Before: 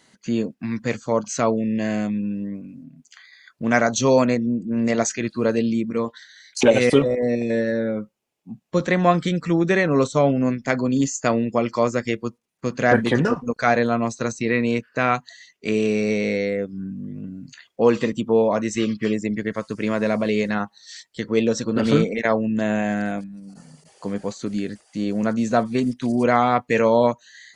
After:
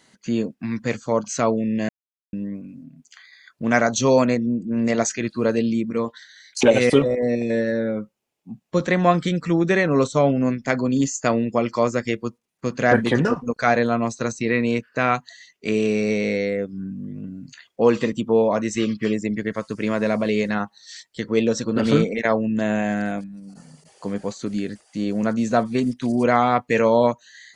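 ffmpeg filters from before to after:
-filter_complex "[0:a]asplit=3[a][b][c];[a]atrim=end=1.89,asetpts=PTS-STARTPTS,afade=t=out:st=1.886:d=0.004:c=hsin[d];[b]atrim=start=1.89:end=2.33,asetpts=PTS-STARTPTS,volume=0[e];[c]atrim=start=2.33,asetpts=PTS-STARTPTS,afade=t=in:d=0.004:c=hsin[f];[d][e][f]concat=n=3:v=0:a=1"

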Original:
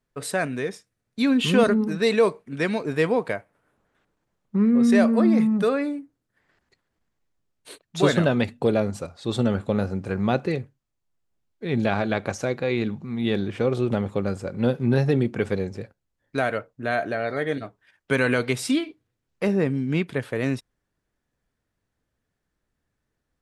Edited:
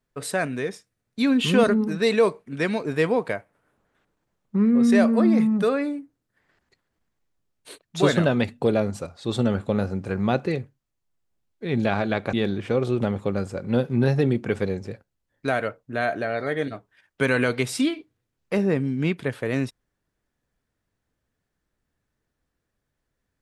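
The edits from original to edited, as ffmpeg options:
-filter_complex "[0:a]asplit=2[a][b];[a]atrim=end=12.332[c];[b]atrim=start=13.228[d];[c][d]acrossfade=d=0.004:c1=hsin:c2=hsin"

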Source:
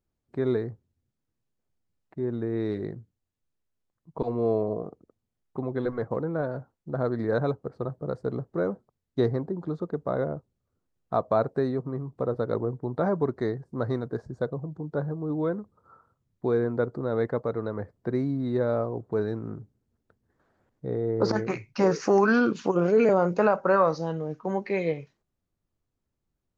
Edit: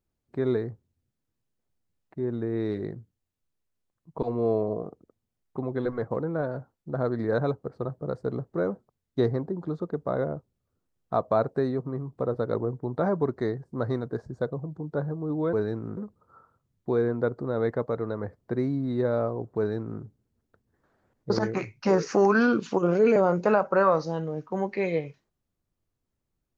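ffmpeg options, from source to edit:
-filter_complex "[0:a]asplit=4[a][b][c][d];[a]atrim=end=15.532[e];[b]atrim=start=19.128:end=19.572[f];[c]atrim=start=15.528:end=20.862[g];[d]atrim=start=21.228[h];[e][f]acrossfade=d=0.004:c1=hsin:c2=hsin[i];[i][g]acrossfade=d=0.004:c1=hsin:c2=hsin[j];[j][h]acrossfade=d=0.004:c1=hsin:c2=hsin"

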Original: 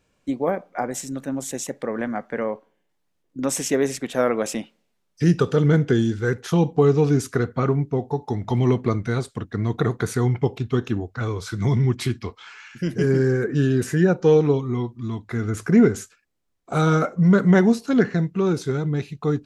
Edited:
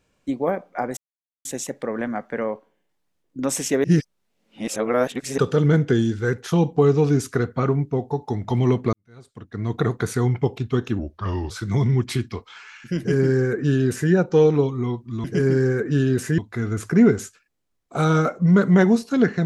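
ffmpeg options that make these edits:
-filter_complex "[0:a]asplit=10[a][b][c][d][e][f][g][h][i][j];[a]atrim=end=0.97,asetpts=PTS-STARTPTS,afade=t=out:st=0.966:d=0.004:c=hsin[k];[b]atrim=start=0.97:end=1.45,asetpts=PTS-STARTPTS,volume=0[l];[c]atrim=start=1.45:end=3.842,asetpts=PTS-STARTPTS,afade=t=in:d=0.004:c=hsin[m];[d]atrim=start=3.838:end=5.382,asetpts=PTS-STARTPTS,areverse[n];[e]atrim=start=5.378:end=8.93,asetpts=PTS-STARTPTS,afade=t=out:st=3.548:d=0.004:c=hsin[o];[f]atrim=start=8.93:end=10.994,asetpts=PTS-STARTPTS,afade=t=in:d=0.83:c=qua[p];[g]atrim=start=10.99:end=11.41,asetpts=PTS-STARTPTS,asetrate=36162,aresample=44100[q];[h]atrim=start=11.406:end=15.152[r];[i]atrim=start=12.878:end=14.022[s];[j]atrim=start=15.148[t];[k][l][m]concat=n=3:v=0:a=1[u];[u][n]acrossfade=d=0.004:c1=hsin:c2=hsin[v];[o][p]concat=n=2:v=0:a=1[w];[v][w]acrossfade=d=0.004:c1=hsin:c2=hsin[x];[x][q]acrossfade=d=0.004:c1=hsin:c2=hsin[y];[y][r]acrossfade=d=0.004:c1=hsin:c2=hsin[z];[z][s]acrossfade=d=0.004:c1=hsin:c2=hsin[aa];[aa][t]acrossfade=d=0.004:c1=hsin:c2=hsin"

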